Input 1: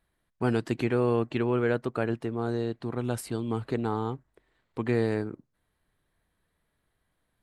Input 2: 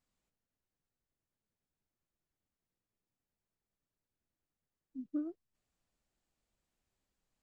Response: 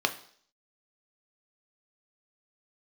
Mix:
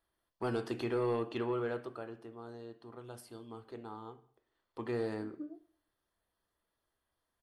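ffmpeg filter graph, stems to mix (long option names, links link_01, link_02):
-filter_complex "[0:a]highshelf=frequency=5900:gain=6.5,volume=-4.5dB,afade=type=out:start_time=1.39:duration=0.64:silence=0.316228,afade=type=in:start_time=4.3:duration=0.38:silence=0.398107,asplit=2[link_01][link_02];[link_02]volume=-4.5dB[link_03];[1:a]asplit=2[link_04][link_05];[link_05]afreqshift=2.5[link_06];[link_04][link_06]amix=inputs=2:normalize=1,adelay=250,volume=-8.5dB,asplit=2[link_07][link_08];[link_08]volume=-8.5dB[link_09];[2:a]atrim=start_sample=2205[link_10];[link_03][link_09]amix=inputs=2:normalize=0[link_11];[link_11][link_10]afir=irnorm=-1:irlink=0[link_12];[link_01][link_07][link_12]amix=inputs=3:normalize=0,bandreject=frequency=3900:width=10,asoftclip=type=tanh:threshold=-23.5dB"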